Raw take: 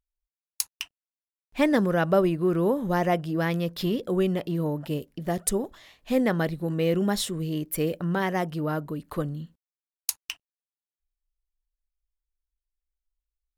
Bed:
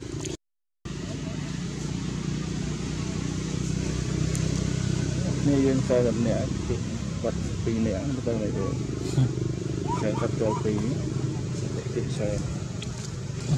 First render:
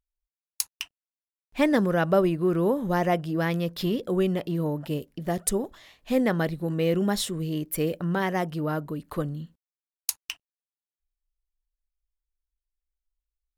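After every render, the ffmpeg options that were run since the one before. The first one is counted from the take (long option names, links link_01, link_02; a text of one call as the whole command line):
ffmpeg -i in.wav -af anull out.wav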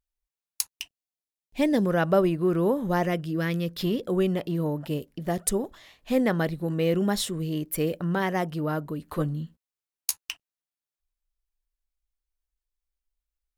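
ffmpeg -i in.wav -filter_complex "[0:a]asettb=1/sr,asplit=3[link_01][link_02][link_03];[link_01]atrim=end=0.694[link_04];[link_02]atrim=start=0.69:end=1.86,asetpts=PTS-STARTPTS,afade=type=in:duration=0.004:curve=qsin,afade=type=out:start_time=1.166:duration=0.004:curve=qsin,equalizer=frequency=1300:width=1.5:gain=-14.5[link_05];[link_03]atrim=start=1.856[link_06];[link_04][link_05]acrossfade=duration=0.004:curve1=hsin:curve2=qsin[link_07];[link_07][link_06]acrossfade=duration=0.004:curve1=qsin:curve2=hsin,asettb=1/sr,asplit=3[link_08][link_09][link_10];[link_08]atrim=end=3.064[link_11];[link_09]atrim=start=3.06:end=3.79,asetpts=PTS-STARTPTS,afade=type=in:duration=0.004:curve=qsin,afade=type=out:start_time=0.726:duration=0.004:curve=qsin,equalizer=frequency=810:width_type=o:width=0.72:gain=-12[link_12];[link_10]atrim=start=3.786[link_13];[link_11][link_12]acrossfade=duration=0.004:curve1=hsin:curve2=qsin[link_14];[link_14][link_13]acrossfade=duration=0.004:curve1=qsin:curve2=hsin,asettb=1/sr,asplit=3[link_15][link_16][link_17];[link_15]atrim=end=9.004[link_18];[link_16]atrim=start=9:end=10.21,asetpts=PTS-STARTPTS,afade=type=in:duration=0.004:curve=qsin,afade=type=out:start_time=1.206:duration=0.004:curve=qsin,asplit=2[link_19][link_20];[link_20]adelay=13,volume=-6dB[link_21];[link_19][link_21]amix=inputs=2:normalize=0,atrim=end_sample=53361[link_22];[link_17]atrim=start=10.206[link_23];[link_18][link_22]acrossfade=duration=0.004:curve1=hsin:curve2=qsin[link_24];[link_24][link_23]acrossfade=duration=0.004:curve1=qsin:curve2=hsin" out.wav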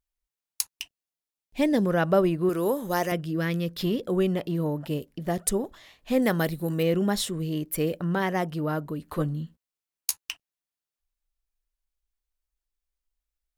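ffmpeg -i in.wav -filter_complex "[0:a]asettb=1/sr,asplit=3[link_01][link_02][link_03];[link_01]atrim=end=2.494[link_04];[link_02]atrim=start=2.49:end=3.12,asetpts=PTS-STARTPTS,afade=type=in:duration=0.004:curve=qsin,afade=type=out:start_time=0.626:duration=0.004:curve=qsin,bass=frequency=250:gain=-9,treble=frequency=4000:gain=11[link_05];[link_03]atrim=start=3.116[link_06];[link_04][link_05]acrossfade=duration=0.004:curve1=hsin:curve2=qsin[link_07];[link_07][link_06]acrossfade=duration=0.004:curve1=qsin:curve2=hsin,asettb=1/sr,asplit=3[link_08][link_09][link_10];[link_08]atrim=end=6.224[link_11];[link_09]atrim=start=6.22:end=6.83,asetpts=PTS-STARTPTS,afade=type=in:duration=0.004:curve=qsin,afade=type=out:start_time=0.606:duration=0.004:curve=qsin,aemphasis=mode=production:type=50kf[link_12];[link_10]atrim=start=6.826[link_13];[link_11][link_12]acrossfade=duration=0.004:curve1=hsin:curve2=qsin[link_14];[link_14][link_13]acrossfade=duration=0.004:curve1=qsin:curve2=hsin" out.wav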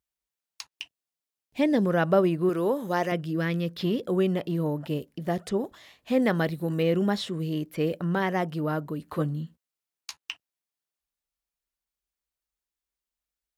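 ffmpeg -i in.wav -filter_complex "[0:a]highpass=81,acrossover=split=4800[link_01][link_02];[link_02]acompressor=threshold=-52dB:ratio=4:attack=1:release=60[link_03];[link_01][link_03]amix=inputs=2:normalize=0" out.wav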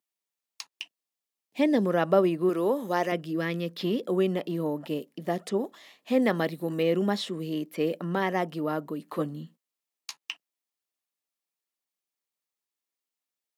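ffmpeg -i in.wav -af "highpass=frequency=190:width=0.5412,highpass=frequency=190:width=1.3066,bandreject=frequency=1500:width=11" out.wav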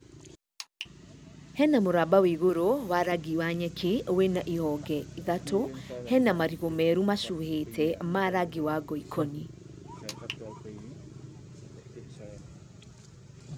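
ffmpeg -i in.wav -i bed.wav -filter_complex "[1:a]volume=-17.5dB[link_01];[0:a][link_01]amix=inputs=2:normalize=0" out.wav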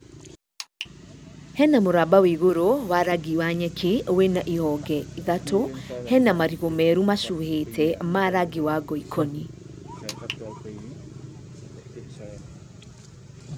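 ffmpeg -i in.wav -af "volume=5.5dB" out.wav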